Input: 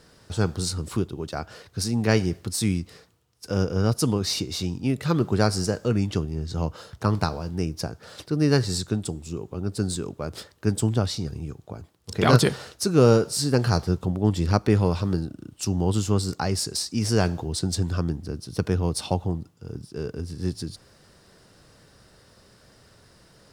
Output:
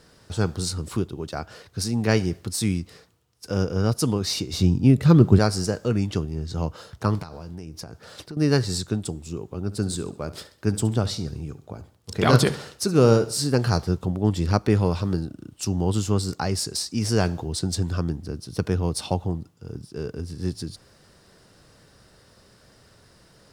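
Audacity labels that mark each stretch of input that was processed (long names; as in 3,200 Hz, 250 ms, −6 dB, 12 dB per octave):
4.530000	5.390000	low-shelf EQ 350 Hz +12 dB
7.220000	8.370000	downward compressor 10 to 1, threshold −32 dBFS
9.610000	13.470000	repeating echo 69 ms, feedback 40%, level −16 dB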